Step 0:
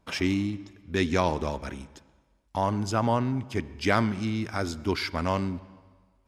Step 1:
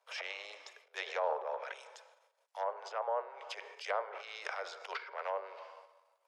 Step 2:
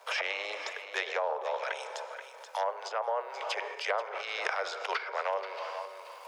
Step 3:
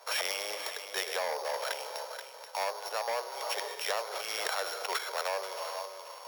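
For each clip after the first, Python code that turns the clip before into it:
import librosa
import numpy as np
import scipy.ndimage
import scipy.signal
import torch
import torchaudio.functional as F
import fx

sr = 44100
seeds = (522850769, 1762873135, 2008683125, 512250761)

y1 = fx.transient(x, sr, attack_db=-11, sustain_db=9)
y1 = scipy.signal.sosfilt(scipy.signal.butter(12, 460.0, 'highpass', fs=sr, output='sos'), y1)
y1 = fx.env_lowpass_down(y1, sr, base_hz=960.0, full_db=-27.0)
y1 = y1 * 10.0 ** (-4.5 / 20.0)
y2 = fx.rider(y1, sr, range_db=3, speed_s=0.5)
y2 = y2 + 10.0 ** (-17.0 / 20.0) * np.pad(y2, (int(480 * sr / 1000.0), 0))[:len(y2)]
y2 = fx.band_squash(y2, sr, depth_pct=70)
y2 = y2 * 10.0 ** (6.0 / 20.0)
y3 = np.r_[np.sort(y2[:len(y2) // 8 * 8].reshape(-1, 8), axis=1).ravel(), y2[len(y2) // 8 * 8:]]
y3 = fx.transformer_sat(y3, sr, knee_hz=4000.0)
y3 = y3 * 10.0 ** (1.0 / 20.0)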